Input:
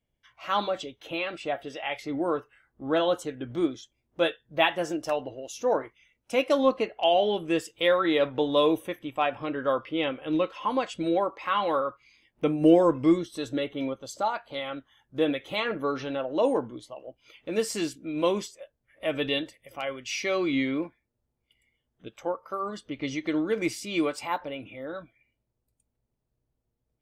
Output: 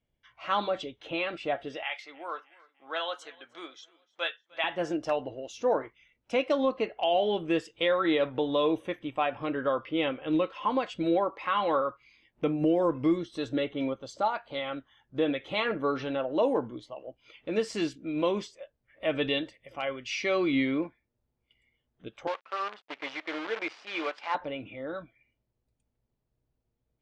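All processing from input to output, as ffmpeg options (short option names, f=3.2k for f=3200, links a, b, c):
-filter_complex "[0:a]asettb=1/sr,asplit=3[a][b][c];[a]atrim=end=1.834[d];[b]atrim=start=1.83:end=4.64,asetpts=PTS-STARTPTS,afade=t=in:d=0.004:c=qsin,afade=t=out:st=2.806:d=0.004:c=qsin,highpass=1.1k,aecho=1:1:304|608|912:0.0631|0.0309|0.0151,atrim=end_sample=123921[e];[c]atrim=start=4.636[f];[d][e]acrossfade=d=0.004:c1=hsin:c2=qsin[g];[g][f]acrossfade=d=0.004:c1=qsin:c2=hsin,asettb=1/sr,asplit=3[h][i][j];[h]atrim=end=22.274[k];[i]atrim=start=22.27:end=24.35,asetpts=PTS-STARTPTS,afade=t=in:d=0.004:c=qsin,afade=t=out:st=2.076:d=0.004:c=qsin,acrusher=bits=6:dc=4:mix=0:aa=0.000001,highpass=620,lowpass=3.5k[l];[j]atrim=start=24.346[m];[k][l]acrossfade=d=0.004:c1=hsin:c2=qsin[n];[n][m]acrossfade=d=0.004:c1=qsin:c2=hsin,lowpass=4.5k,alimiter=limit=-16.5dB:level=0:latency=1:release=226"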